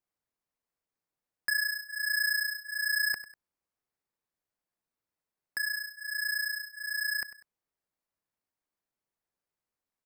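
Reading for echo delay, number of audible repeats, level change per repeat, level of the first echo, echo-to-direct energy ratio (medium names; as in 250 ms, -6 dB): 98 ms, 2, -9.0 dB, -15.0 dB, -14.5 dB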